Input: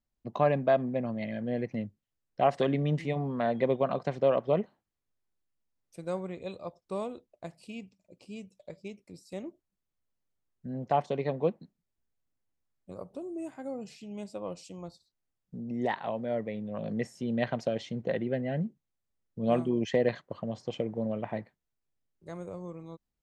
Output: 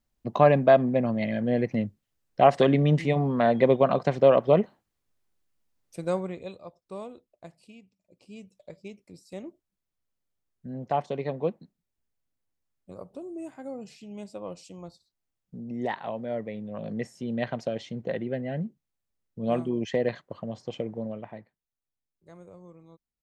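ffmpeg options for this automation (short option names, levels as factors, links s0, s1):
-af "volume=7.94,afade=t=out:st=6.06:d=0.53:silence=0.281838,afade=t=out:st=7.58:d=0.24:silence=0.446684,afade=t=in:st=7.82:d=0.75:silence=0.281838,afade=t=out:st=20.9:d=0.46:silence=0.398107"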